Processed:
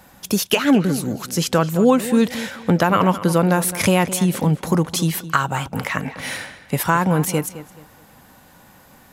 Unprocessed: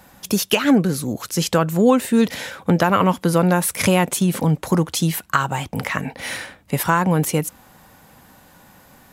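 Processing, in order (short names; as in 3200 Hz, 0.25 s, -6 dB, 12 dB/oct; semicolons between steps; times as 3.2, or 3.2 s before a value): darkening echo 0.214 s, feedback 30%, low-pass 4600 Hz, level -14 dB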